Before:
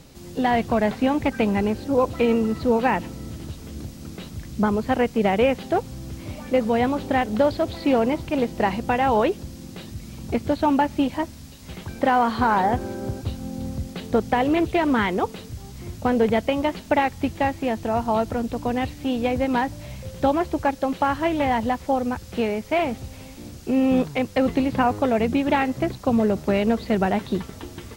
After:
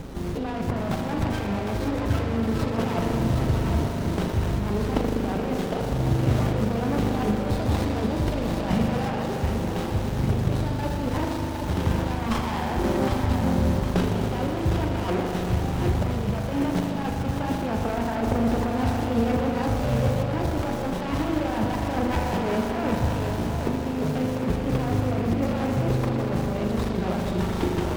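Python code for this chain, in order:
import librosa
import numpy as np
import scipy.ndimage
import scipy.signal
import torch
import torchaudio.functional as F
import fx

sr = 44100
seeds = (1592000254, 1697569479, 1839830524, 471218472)

y = fx.dereverb_blind(x, sr, rt60_s=0.53)
y = fx.over_compress(y, sr, threshold_db=-31.0, ratio=-1.0)
y = fx.echo_thinned(y, sr, ms=760, feedback_pct=50, hz=230.0, wet_db=-6)
y = fx.rev_spring(y, sr, rt60_s=3.3, pass_ms=(39,), chirp_ms=30, drr_db=-0.5)
y = fx.running_max(y, sr, window=17)
y = F.gain(torch.from_numpy(y), 3.5).numpy()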